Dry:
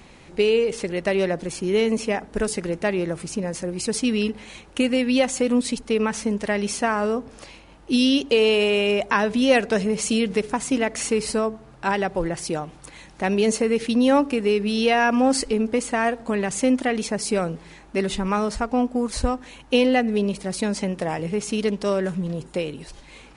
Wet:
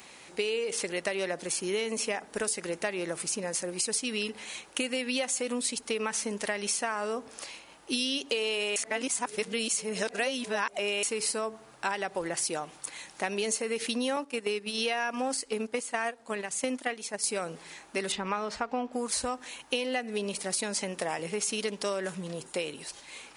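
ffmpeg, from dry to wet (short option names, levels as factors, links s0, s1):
-filter_complex "[0:a]asettb=1/sr,asplit=3[s0][s1][s2];[s0]atrim=end=14.164[s3];[s1]atrim=start=14.16:end=17.24,asetpts=PTS-STARTPTS,afade=t=in:d=0.004:c=qsin,afade=t=out:st=3.076:d=0.004:c=qsin,agate=range=0.316:threshold=0.0708:ratio=16:release=100:detection=peak[s4];[s2]atrim=start=17.236[s5];[s3][s4]acrossfade=d=0.004:c1=hsin:c2=qsin[s6];[s6][s5]acrossfade=d=0.004:c1=qsin:c2=hsin,asettb=1/sr,asplit=3[s7][s8][s9];[s7]atrim=end=18.124[s10];[s8]atrim=start=18.12:end=18.93,asetpts=PTS-STARTPTS,afade=t=in:d=0.004:c=qsin,afade=t=out:st=0.806:d=0.004:c=qsin,lowpass=3800[s11];[s9]atrim=start=18.926[s12];[s10][s11]acrossfade=d=0.004:c1=hsin:c2=qsin[s13];[s13][s12]acrossfade=d=0.004:c1=qsin:c2=hsin,asplit=3[s14][s15][s16];[s14]atrim=end=8.762[s17];[s15]atrim=start=8.758:end=11.032,asetpts=PTS-STARTPTS,areverse[s18];[s16]atrim=start=11.028[s19];[s17][s18]acrossfade=d=0.004:c1=hsin:c2=hsin[s20];[s20][s19]acrossfade=d=0.004:c1=hsin:c2=hsin,highpass=f=720:p=1,highshelf=f=7400:g=11.5,acompressor=threshold=0.0447:ratio=6"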